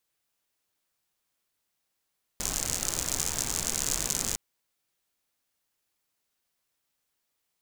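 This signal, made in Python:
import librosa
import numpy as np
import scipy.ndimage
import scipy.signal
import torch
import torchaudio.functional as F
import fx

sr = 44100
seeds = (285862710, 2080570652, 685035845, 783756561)

y = fx.rain(sr, seeds[0], length_s=1.96, drops_per_s=86.0, hz=6900.0, bed_db=-4.5)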